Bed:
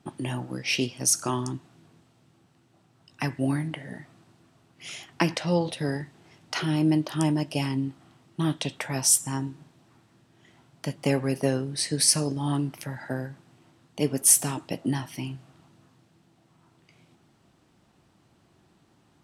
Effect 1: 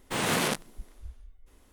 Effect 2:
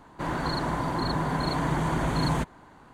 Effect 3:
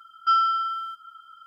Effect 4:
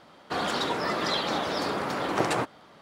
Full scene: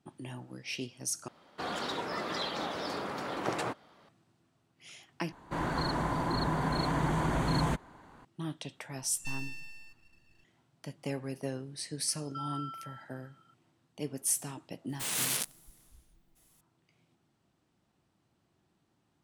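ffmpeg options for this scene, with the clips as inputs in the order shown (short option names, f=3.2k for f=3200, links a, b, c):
-filter_complex "[3:a]asplit=2[a][b];[0:a]volume=-12dB[c];[2:a]acontrast=75[d];[a]aeval=exprs='abs(val(0))':c=same[e];[b]alimiter=limit=-18.5dB:level=0:latency=1:release=71[f];[1:a]crystalizer=i=8:c=0[g];[c]asplit=3[h][i][j];[h]atrim=end=1.284[k];[4:a]atrim=end=2.81,asetpts=PTS-STARTPTS,volume=-7.5dB[l];[i]atrim=start=4.086:end=5.324[m];[d]atrim=end=2.93,asetpts=PTS-STARTPTS,volume=-10dB[n];[j]atrim=start=8.246[o];[e]atrim=end=1.46,asetpts=PTS-STARTPTS,volume=-15dB,afade=t=in:d=0.004:c=hsin,afade=t=out:st=1.456:d=0.004:c=hsin,adelay=396018S[p];[f]atrim=end=1.46,asetpts=PTS-STARTPTS,volume=-16.5dB,afade=t=in:d=0.004:c=hsin,afade=t=out:st=1.456:d=0.004:c=hsin,adelay=12080[q];[g]atrim=end=1.72,asetpts=PTS-STARTPTS,volume=-17dB,afade=t=in:d=0.004:c=hsin,afade=t=out:st=1.716:d=0.004:c=hsin,adelay=14890[r];[k][l]acrossfade=d=0.004:c1=hsin:c2=hsin[s];[s][m]acrossfade=d=0.004:c1=hsin:c2=hsin[t];[t][n]acrossfade=d=0.004:c1=hsin:c2=hsin[u];[u][o]acrossfade=d=0.004:c1=hsin:c2=hsin[v];[v][p][q][r]amix=inputs=4:normalize=0"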